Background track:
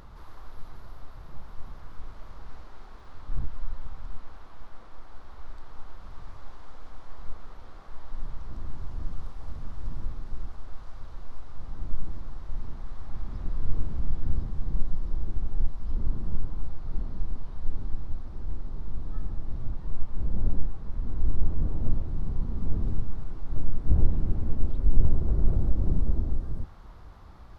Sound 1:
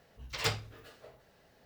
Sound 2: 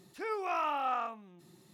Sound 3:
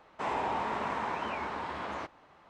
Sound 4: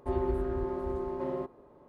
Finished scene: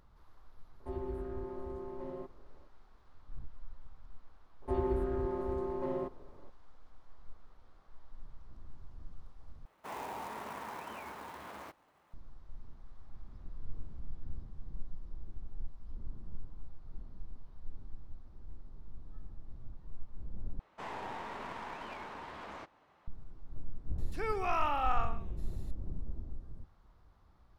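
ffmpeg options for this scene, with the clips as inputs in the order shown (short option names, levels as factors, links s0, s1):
-filter_complex "[4:a]asplit=2[s0][s1];[3:a]asplit=2[s2][s3];[0:a]volume=0.168[s4];[s0]acrossover=split=440|3000[s5][s6][s7];[s6]acompressor=threshold=0.0158:ratio=6:attack=3.2:release=140:knee=2.83:detection=peak[s8];[s5][s8][s7]amix=inputs=3:normalize=0[s9];[s2]acrusher=bits=3:mode=log:mix=0:aa=0.000001[s10];[s3]aeval=exprs='clip(val(0),-1,0.0126)':c=same[s11];[2:a]asplit=2[s12][s13];[s13]adelay=128.3,volume=0.224,highshelf=f=4000:g=-2.89[s14];[s12][s14]amix=inputs=2:normalize=0[s15];[s4]asplit=3[s16][s17][s18];[s16]atrim=end=9.654[s19];[s10]atrim=end=2.49,asetpts=PTS-STARTPTS,volume=0.316[s20];[s17]atrim=start=12.136:end=20.594[s21];[s11]atrim=end=2.49,asetpts=PTS-STARTPTS,volume=0.422[s22];[s18]atrim=start=23.076[s23];[s9]atrim=end=1.88,asetpts=PTS-STARTPTS,volume=0.376,afade=t=in:d=0.004:c=hsin,afade=t=out:st=1.876:d=0.004:c=hsin,adelay=800[s24];[s1]atrim=end=1.88,asetpts=PTS-STARTPTS,volume=0.794,afade=t=in:d=0.004:c=hsin,afade=t=out:st=1.876:d=0.004:c=hsin,adelay=4620[s25];[s15]atrim=end=1.73,asetpts=PTS-STARTPTS,afade=t=in:d=0.004:c=hsin,afade=t=out:st=1.726:d=0.004:c=hsin,adelay=23980[s26];[s19][s20]acrossfade=d=0.004:c1=hsin:c2=hsin[s27];[s27][s21]acrossfade=d=0.004:c1=hsin:c2=hsin[s28];[s28][s22]acrossfade=d=0.004:c1=hsin:c2=hsin[s29];[s29][s23]acrossfade=d=0.004:c1=hsin:c2=hsin[s30];[s30][s24][s25][s26]amix=inputs=4:normalize=0"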